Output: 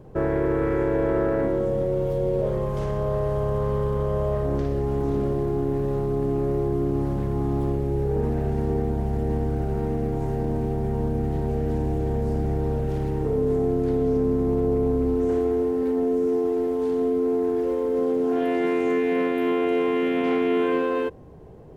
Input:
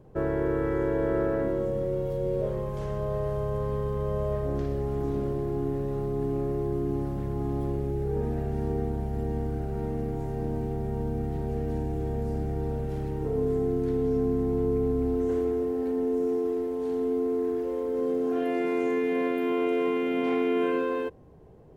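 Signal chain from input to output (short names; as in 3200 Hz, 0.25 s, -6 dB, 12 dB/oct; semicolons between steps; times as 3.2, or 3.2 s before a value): in parallel at +2 dB: limiter -26 dBFS, peak gain reduction 10 dB; on the sum: Doppler distortion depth 0.17 ms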